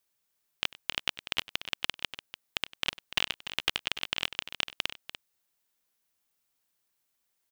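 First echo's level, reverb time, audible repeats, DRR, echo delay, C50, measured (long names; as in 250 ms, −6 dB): −20.0 dB, no reverb audible, 2, no reverb audible, 97 ms, no reverb audible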